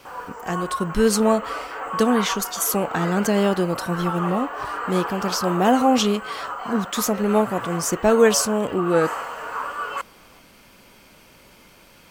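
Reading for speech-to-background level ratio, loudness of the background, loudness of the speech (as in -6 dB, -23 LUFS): 8.5 dB, -30.0 LUFS, -21.5 LUFS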